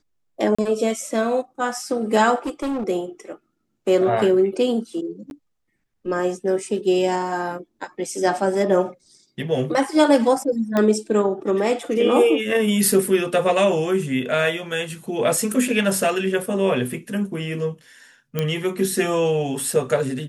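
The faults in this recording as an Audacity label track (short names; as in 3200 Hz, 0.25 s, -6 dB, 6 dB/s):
0.550000	0.580000	gap 35 ms
2.460000	2.840000	clipped -21.5 dBFS
5.300000	5.310000	gap 11 ms
10.770000	10.770000	pop -9 dBFS
18.390000	18.390000	pop -9 dBFS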